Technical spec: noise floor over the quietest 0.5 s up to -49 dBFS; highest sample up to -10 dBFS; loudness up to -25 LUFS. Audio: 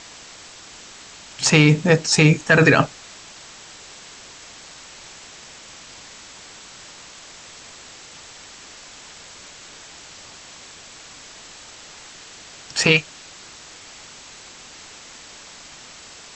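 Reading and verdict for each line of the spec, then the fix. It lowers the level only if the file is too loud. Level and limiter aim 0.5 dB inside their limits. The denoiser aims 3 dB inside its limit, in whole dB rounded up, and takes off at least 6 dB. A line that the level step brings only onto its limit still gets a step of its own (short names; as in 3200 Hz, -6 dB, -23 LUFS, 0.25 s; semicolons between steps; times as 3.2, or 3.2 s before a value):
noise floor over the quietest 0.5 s -42 dBFS: fail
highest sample -2.5 dBFS: fail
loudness -16.5 LUFS: fail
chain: gain -9 dB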